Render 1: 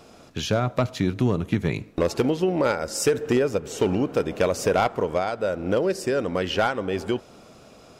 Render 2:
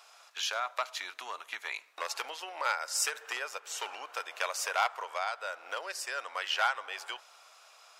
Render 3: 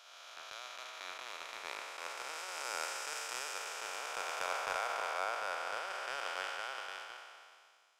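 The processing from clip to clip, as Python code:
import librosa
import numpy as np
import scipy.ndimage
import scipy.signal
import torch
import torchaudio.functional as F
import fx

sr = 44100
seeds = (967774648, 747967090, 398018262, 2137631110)

y1 = scipy.signal.sosfilt(scipy.signal.butter(4, 890.0, 'highpass', fs=sr, output='sos'), x)
y1 = y1 * 10.0 ** (-2.0 / 20.0)
y2 = fx.spec_blur(y1, sr, span_ms=1450.0)
y2 = fx.transient(y2, sr, attack_db=8, sustain_db=-8)
y2 = fx.band_widen(y2, sr, depth_pct=100)
y2 = y2 * 10.0 ** (1.5 / 20.0)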